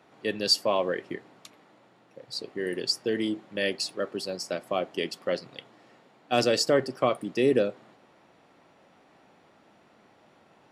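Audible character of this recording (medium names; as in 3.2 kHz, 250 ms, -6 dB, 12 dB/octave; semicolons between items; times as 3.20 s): noise floor -60 dBFS; spectral tilt -3.5 dB/octave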